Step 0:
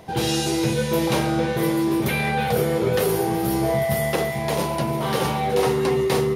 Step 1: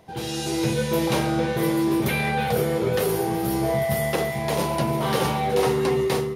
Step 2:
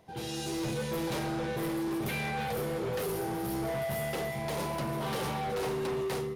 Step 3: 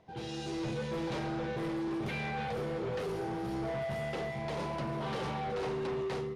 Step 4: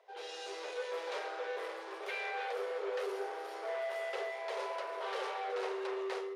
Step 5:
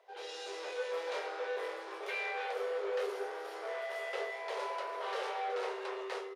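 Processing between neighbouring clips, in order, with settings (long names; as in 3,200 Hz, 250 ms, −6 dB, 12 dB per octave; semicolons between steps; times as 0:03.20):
automatic gain control; level −8.5 dB
gain into a clipping stage and back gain 22.5 dB; level −7.5 dB
high-frequency loss of the air 99 metres; level −2 dB
Chebyshev high-pass with heavy ripple 390 Hz, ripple 3 dB; level +1 dB
double-tracking delay 22 ms −7 dB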